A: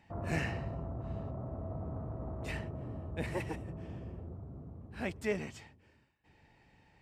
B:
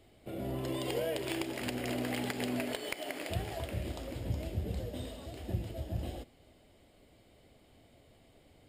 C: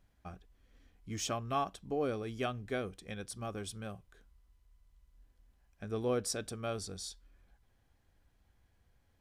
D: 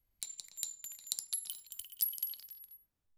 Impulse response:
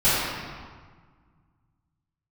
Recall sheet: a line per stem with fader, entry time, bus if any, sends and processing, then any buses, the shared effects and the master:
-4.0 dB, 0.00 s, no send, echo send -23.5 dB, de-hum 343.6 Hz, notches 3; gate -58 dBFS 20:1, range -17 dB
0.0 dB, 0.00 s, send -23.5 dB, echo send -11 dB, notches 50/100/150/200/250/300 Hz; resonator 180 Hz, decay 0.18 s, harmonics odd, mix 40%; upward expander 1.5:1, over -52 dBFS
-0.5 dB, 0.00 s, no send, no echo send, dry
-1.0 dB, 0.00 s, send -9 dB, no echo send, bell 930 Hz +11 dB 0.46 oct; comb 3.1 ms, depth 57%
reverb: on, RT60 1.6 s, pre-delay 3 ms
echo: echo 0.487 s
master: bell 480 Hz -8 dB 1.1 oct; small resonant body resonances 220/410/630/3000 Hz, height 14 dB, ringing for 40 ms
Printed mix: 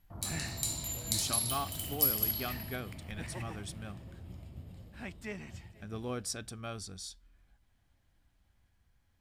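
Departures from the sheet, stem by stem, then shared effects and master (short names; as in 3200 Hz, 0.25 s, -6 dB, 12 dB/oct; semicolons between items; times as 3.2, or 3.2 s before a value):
stem B 0.0 dB -> -9.0 dB; stem D: missing comb 3.1 ms, depth 57%; master: missing small resonant body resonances 220/410/630/3000 Hz, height 14 dB, ringing for 40 ms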